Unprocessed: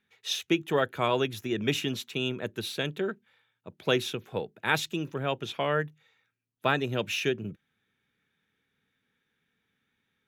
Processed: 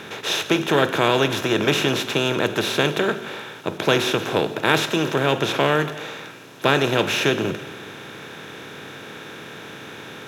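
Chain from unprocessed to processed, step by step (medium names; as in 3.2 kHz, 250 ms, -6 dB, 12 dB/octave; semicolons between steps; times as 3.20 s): spectral levelling over time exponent 0.4; gated-style reverb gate 490 ms falling, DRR 10.5 dB; trim +3 dB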